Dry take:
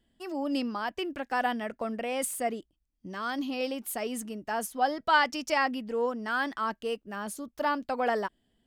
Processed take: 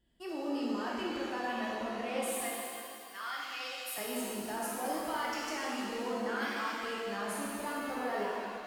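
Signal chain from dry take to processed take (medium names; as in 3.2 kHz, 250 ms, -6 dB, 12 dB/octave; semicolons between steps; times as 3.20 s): 2.40–3.98 s: high-pass 1.2 kHz 12 dB/octave; peak limiter -27.5 dBFS, peak gain reduction 15.5 dB; 6.40–6.82 s: tilt EQ +3.5 dB/octave; pitch-shifted reverb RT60 2.3 s, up +7 st, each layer -8 dB, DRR -5 dB; trim -6 dB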